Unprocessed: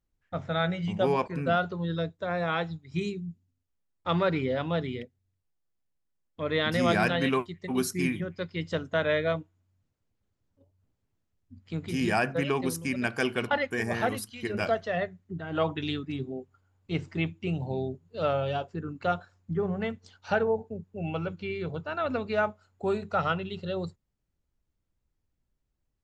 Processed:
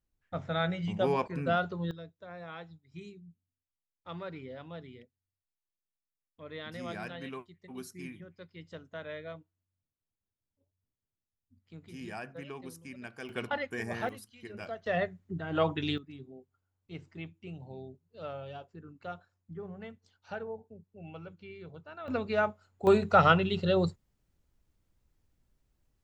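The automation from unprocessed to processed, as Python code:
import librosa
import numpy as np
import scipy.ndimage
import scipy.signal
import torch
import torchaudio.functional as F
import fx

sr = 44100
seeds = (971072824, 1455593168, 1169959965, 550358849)

y = fx.gain(x, sr, db=fx.steps((0.0, -3.0), (1.91, -15.5), (13.29, -6.5), (14.09, -13.0), (14.86, -0.5), (15.98, -13.5), (22.08, -1.5), (22.87, 6.0)))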